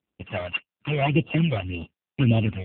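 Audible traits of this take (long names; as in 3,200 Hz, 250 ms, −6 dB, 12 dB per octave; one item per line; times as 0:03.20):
a buzz of ramps at a fixed pitch in blocks of 16 samples
phaser sweep stages 12, 1.8 Hz, lowest notch 270–1,900 Hz
AMR narrowband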